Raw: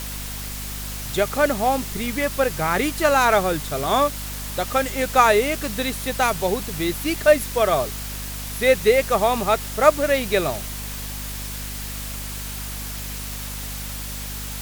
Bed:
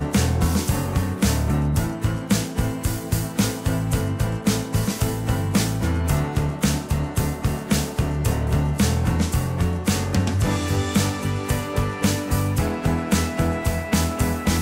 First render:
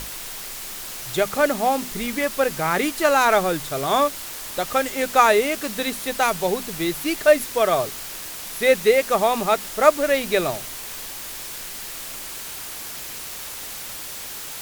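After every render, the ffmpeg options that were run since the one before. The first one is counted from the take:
-af "bandreject=f=50:t=h:w=6,bandreject=f=100:t=h:w=6,bandreject=f=150:t=h:w=6,bandreject=f=200:t=h:w=6,bandreject=f=250:t=h:w=6"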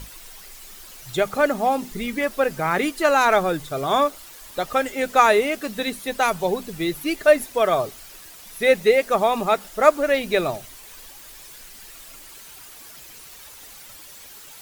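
-af "afftdn=nr=11:nf=-34"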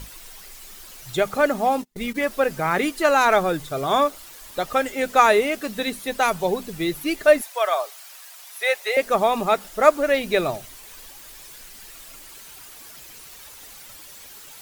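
-filter_complex "[0:a]asplit=3[s0][s1][s2];[s0]afade=t=out:st=1.74:d=0.02[s3];[s1]agate=range=0.0158:threshold=0.0316:ratio=16:release=100:detection=peak,afade=t=in:st=1.74:d=0.02,afade=t=out:st=2.14:d=0.02[s4];[s2]afade=t=in:st=2.14:d=0.02[s5];[s3][s4][s5]amix=inputs=3:normalize=0,asettb=1/sr,asplit=3[s6][s7][s8];[s6]atrim=end=7.414[s9];[s7]atrim=start=7.41:end=8.97,asetpts=PTS-STARTPTS,afade=t=in:d=0.004:c=qsin,afade=t=out:st=1.556:d=0.004:c=qsin,highpass=f=630:w=0.5412,highpass=f=630:w=1.3066[s10];[s8]atrim=start=8.966[s11];[s9][s10]acrossfade=d=0.004:c1=hsin:c2=qsin[s12];[s12][s11]acrossfade=d=0.004:c1=qsin:c2=hsin"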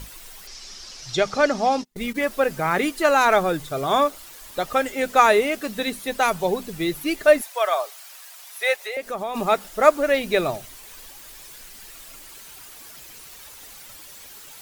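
-filter_complex "[0:a]asettb=1/sr,asplit=3[s0][s1][s2];[s0]atrim=end=0.474[s3];[s1]atrim=start=0.47:end=1.85,asetpts=PTS-STARTPTS,afade=t=in:d=0.004:c=qsin,afade=t=out:st=1.376:d=0.004:c=qsin,lowpass=f=5400:t=q:w=4.1[s4];[s2]atrim=start=1.846[s5];[s3][s4]acrossfade=d=0.004:c1=hsin:c2=qsin[s6];[s6][s5]acrossfade=d=0.004:c1=qsin:c2=hsin,asplit=3[s7][s8][s9];[s7]afade=t=out:st=8.75:d=0.02[s10];[s8]acompressor=threshold=0.0251:ratio=2:attack=3.2:release=140:knee=1:detection=peak,afade=t=in:st=8.75:d=0.02,afade=t=out:st=9.34:d=0.02[s11];[s9]afade=t=in:st=9.34:d=0.02[s12];[s10][s11][s12]amix=inputs=3:normalize=0"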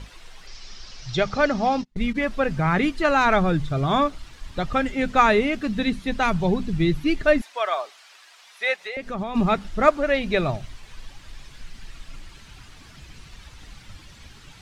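-af "lowpass=4300,asubboost=boost=8:cutoff=180"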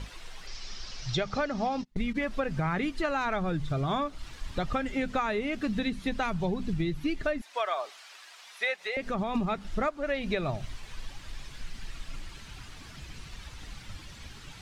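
-af "acompressor=threshold=0.0501:ratio=10"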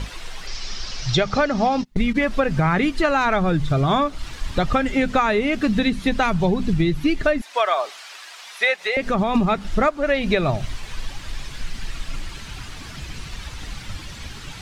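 -af "volume=3.35"

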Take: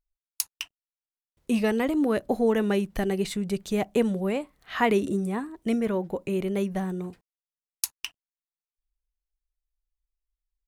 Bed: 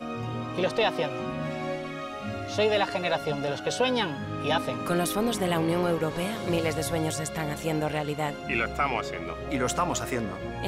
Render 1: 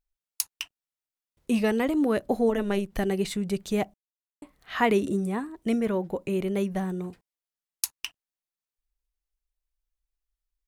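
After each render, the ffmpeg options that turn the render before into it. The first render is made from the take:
-filter_complex "[0:a]asplit=3[s0][s1][s2];[s0]afade=t=out:st=2.48:d=0.02[s3];[s1]tremolo=f=200:d=0.667,afade=t=in:st=2.48:d=0.02,afade=t=out:st=2.91:d=0.02[s4];[s2]afade=t=in:st=2.91:d=0.02[s5];[s3][s4][s5]amix=inputs=3:normalize=0,asplit=3[s6][s7][s8];[s6]atrim=end=3.94,asetpts=PTS-STARTPTS,afade=t=out:st=3.936:d=0.004:c=hsin[s9];[s7]atrim=start=3.94:end=4.42,asetpts=PTS-STARTPTS,volume=0[s10];[s8]atrim=start=4.42,asetpts=PTS-STARTPTS,afade=t=in:d=0.004:c=hsin[s11];[s9][s10][s11]concat=n=3:v=0:a=1"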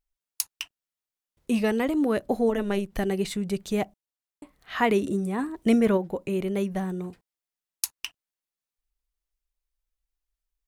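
-filter_complex "[0:a]asplit=3[s0][s1][s2];[s0]afade=t=out:st=5.38:d=0.02[s3];[s1]acontrast=37,afade=t=in:st=5.38:d=0.02,afade=t=out:st=5.96:d=0.02[s4];[s2]afade=t=in:st=5.96:d=0.02[s5];[s3][s4][s5]amix=inputs=3:normalize=0"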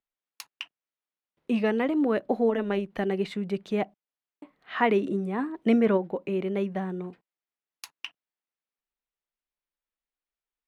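-filter_complex "[0:a]acrossover=split=150 3700:gain=0.0891 1 0.1[s0][s1][s2];[s0][s1][s2]amix=inputs=3:normalize=0"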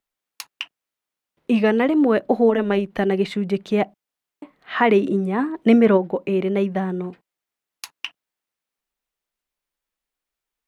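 -af "volume=2.37,alimiter=limit=0.708:level=0:latency=1"

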